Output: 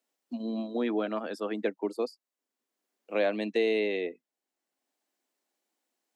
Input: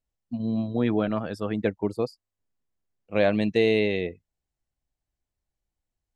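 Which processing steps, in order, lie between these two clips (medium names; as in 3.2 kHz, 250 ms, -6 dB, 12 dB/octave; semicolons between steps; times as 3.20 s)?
steep high-pass 240 Hz 36 dB/octave; three bands compressed up and down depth 40%; trim -3.5 dB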